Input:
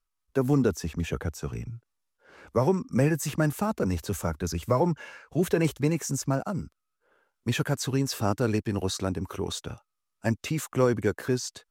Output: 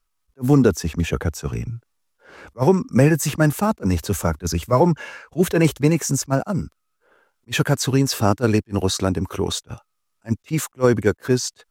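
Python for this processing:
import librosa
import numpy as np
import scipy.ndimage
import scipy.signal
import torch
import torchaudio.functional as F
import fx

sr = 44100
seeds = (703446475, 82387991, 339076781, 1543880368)

y = fx.attack_slew(x, sr, db_per_s=470.0)
y = F.gain(torch.from_numpy(y), 8.5).numpy()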